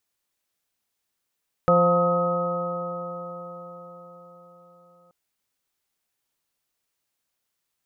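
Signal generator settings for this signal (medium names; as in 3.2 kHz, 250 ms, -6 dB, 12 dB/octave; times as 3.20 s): stretched partials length 3.43 s, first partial 173 Hz, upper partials -11/5/-5/-10.5/-17/2.5 dB, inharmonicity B 0.0019, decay 5.00 s, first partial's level -21.5 dB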